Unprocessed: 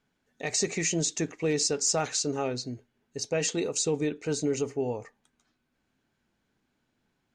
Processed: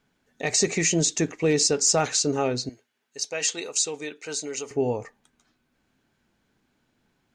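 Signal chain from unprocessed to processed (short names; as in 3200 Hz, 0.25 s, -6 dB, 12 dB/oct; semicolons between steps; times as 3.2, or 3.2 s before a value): 2.69–4.71 HPF 1500 Hz 6 dB/oct; gain +5.5 dB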